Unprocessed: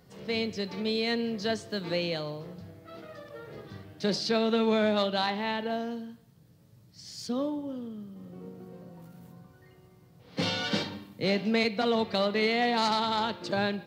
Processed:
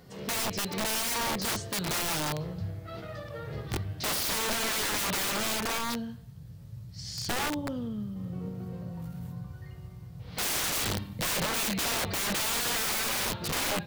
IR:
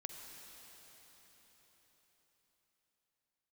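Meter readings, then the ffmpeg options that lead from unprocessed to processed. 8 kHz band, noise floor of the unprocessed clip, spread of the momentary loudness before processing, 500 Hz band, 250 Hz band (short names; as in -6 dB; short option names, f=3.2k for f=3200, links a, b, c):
+17.5 dB, -58 dBFS, 20 LU, -8.0 dB, -5.0 dB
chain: -af "asubboost=boost=9:cutoff=99,aeval=exprs='(mod(31.6*val(0)+1,2)-1)/31.6':c=same,volume=5dB"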